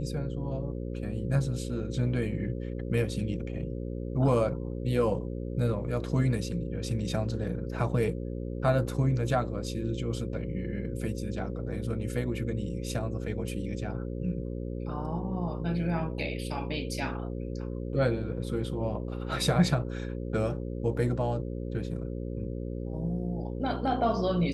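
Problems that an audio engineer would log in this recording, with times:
buzz 60 Hz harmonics 9 -35 dBFS

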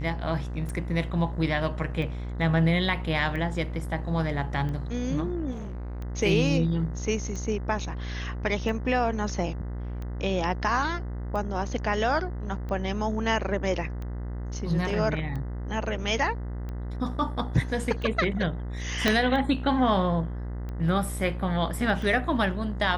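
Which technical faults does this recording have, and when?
buzz 60 Hz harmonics 34 -33 dBFS
tick 45 rpm -25 dBFS
5.51–6 clipped -32.5 dBFS
19.08 pop -7 dBFS

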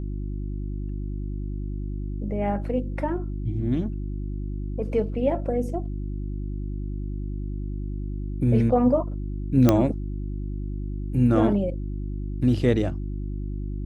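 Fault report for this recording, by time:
hum 50 Hz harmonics 7 -30 dBFS
9.69 pop -5 dBFS

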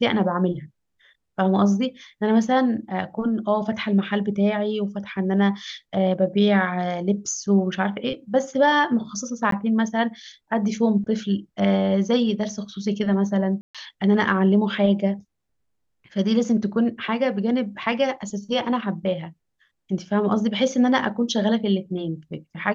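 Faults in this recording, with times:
9.51–9.52 gap 13 ms
13.61–13.75 gap 0.136 s

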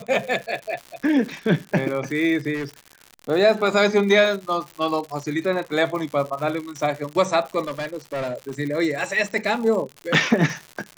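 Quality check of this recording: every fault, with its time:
crackle 140/s -29 dBFS
2.54–2.74 clipped -24 dBFS
7.67–8.53 clipped -24 dBFS

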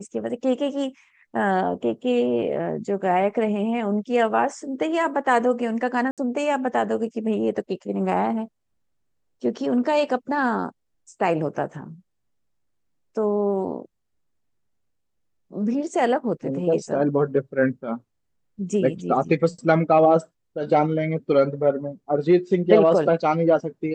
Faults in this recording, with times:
6.11–6.18 gap 67 ms

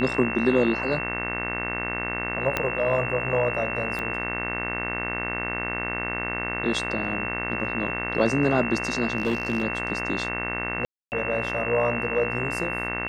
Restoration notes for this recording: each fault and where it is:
buzz 60 Hz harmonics 37 -32 dBFS
tone 2700 Hz -30 dBFS
2.57 pop -9 dBFS
3.99 pop -17 dBFS
9.17–9.63 clipped -19 dBFS
10.85–11.12 gap 0.269 s

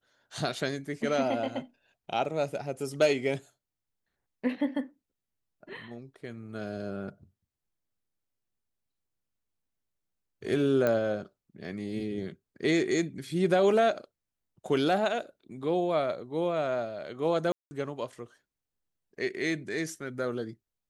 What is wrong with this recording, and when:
10.87 pop -15 dBFS
17.52–17.71 gap 0.19 s

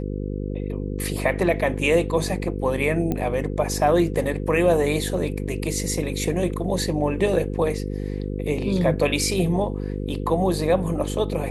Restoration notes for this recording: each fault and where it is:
buzz 50 Hz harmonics 10 -28 dBFS
3.12 pop -13 dBFS

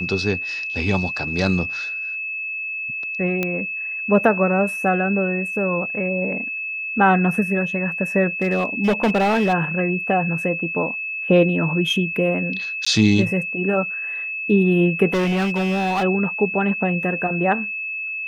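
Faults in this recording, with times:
tone 2600 Hz -25 dBFS
3.43 pop -9 dBFS
8.42–9.54 clipped -14 dBFS
12.85–12.87 gap 15 ms
15.13–16.04 clipped -17.5 dBFS

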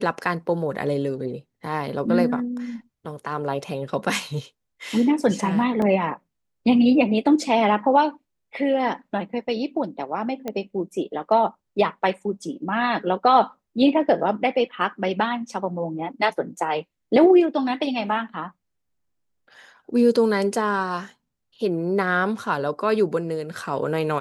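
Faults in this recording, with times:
5.82 gap 2.3 ms
10.48 pop -15 dBFS

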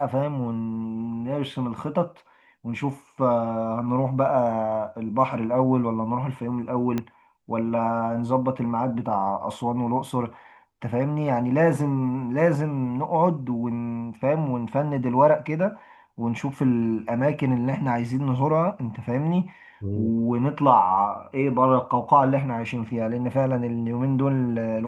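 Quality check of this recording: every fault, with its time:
6.98 pop -14 dBFS

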